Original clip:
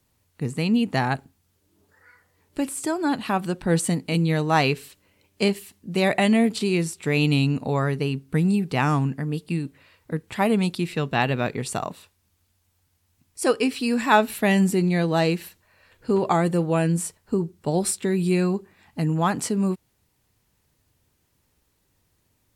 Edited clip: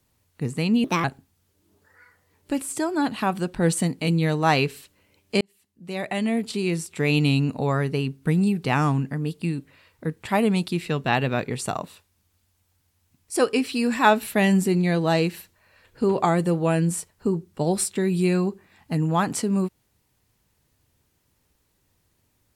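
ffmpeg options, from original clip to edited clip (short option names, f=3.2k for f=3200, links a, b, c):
-filter_complex "[0:a]asplit=4[a][b][c][d];[a]atrim=end=0.844[e];[b]atrim=start=0.84:end=1.11,asetpts=PTS-STARTPTS,asetrate=59535,aresample=44100[f];[c]atrim=start=1.106:end=5.48,asetpts=PTS-STARTPTS,afade=t=out:st=4.37:d=0.004:c=hsin[g];[d]atrim=start=5.48,asetpts=PTS-STARTPTS,afade=t=in:d=1.64[h];[e][f]acrossfade=d=0.004:c1=hsin:c2=hsin[i];[g][h]concat=n=2:v=0:a=1[j];[i][j]acrossfade=d=0.004:c1=hsin:c2=hsin"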